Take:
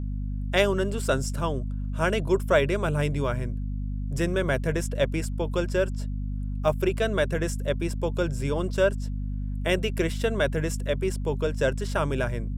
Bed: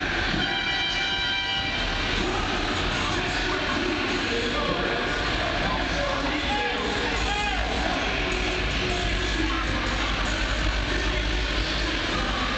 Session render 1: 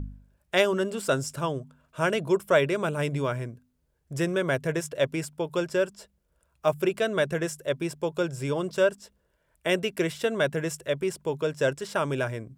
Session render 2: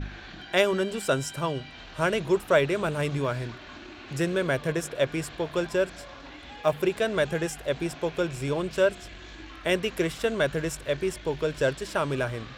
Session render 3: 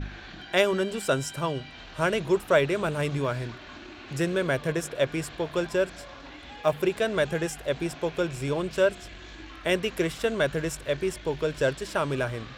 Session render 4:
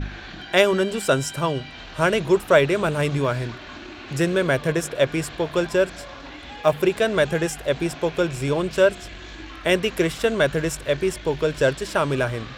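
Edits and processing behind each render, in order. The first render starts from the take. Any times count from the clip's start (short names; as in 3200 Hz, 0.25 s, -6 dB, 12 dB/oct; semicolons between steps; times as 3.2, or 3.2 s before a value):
de-hum 50 Hz, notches 5
add bed -18.5 dB
nothing audible
gain +5.5 dB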